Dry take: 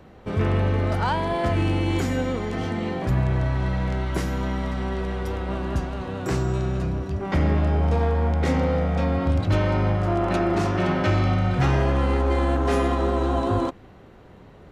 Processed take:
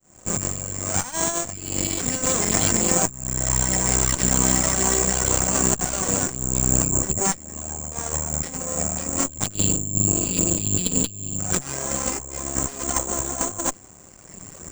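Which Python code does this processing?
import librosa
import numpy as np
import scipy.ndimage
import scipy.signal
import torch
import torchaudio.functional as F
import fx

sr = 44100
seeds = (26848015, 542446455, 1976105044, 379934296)

y = fx.fade_in_head(x, sr, length_s=0.81)
y = fx.highpass(y, sr, hz=92.0, slope=12, at=(11.55, 12.19))
y = fx.dereverb_blind(y, sr, rt60_s=1.7)
y = fx.spec_box(y, sr, start_s=9.54, length_s=1.85, low_hz=330.0, high_hz=2500.0, gain_db=-25)
y = fx.dynamic_eq(y, sr, hz=4200.0, q=1.1, threshold_db=-52.0, ratio=4.0, max_db=6)
y = fx.over_compress(y, sr, threshold_db=-31.0, ratio=-0.5)
y = fx.notch_comb(y, sr, f0_hz=440.0)
y = (np.kron(scipy.signal.resample_poly(y, 1, 6), np.eye(6)[0]) * 6)[:len(y)]
y = fx.running_max(y, sr, window=3)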